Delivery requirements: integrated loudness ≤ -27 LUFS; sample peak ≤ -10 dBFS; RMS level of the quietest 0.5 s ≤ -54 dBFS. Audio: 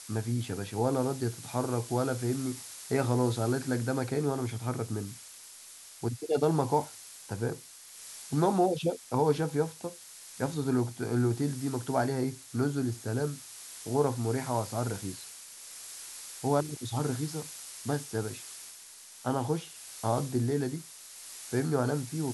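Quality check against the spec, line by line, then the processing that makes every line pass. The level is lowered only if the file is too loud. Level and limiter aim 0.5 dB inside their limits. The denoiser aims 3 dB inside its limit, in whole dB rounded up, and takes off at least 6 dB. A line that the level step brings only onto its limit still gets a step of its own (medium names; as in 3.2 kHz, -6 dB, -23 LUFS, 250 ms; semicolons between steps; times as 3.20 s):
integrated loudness -31.5 LUFS: pass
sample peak -12.5 dBFS: pass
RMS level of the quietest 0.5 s -50 dBFS: fail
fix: noise reduction 7 dB, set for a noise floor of -50 dBFS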